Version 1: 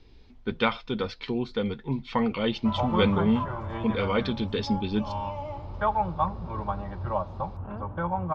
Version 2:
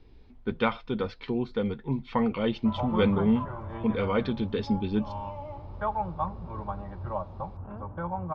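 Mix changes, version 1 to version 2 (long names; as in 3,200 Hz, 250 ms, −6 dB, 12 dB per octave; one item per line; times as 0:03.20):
background −3.5 dB
master: add high-shelf EQ 3,100 Hz −12 dB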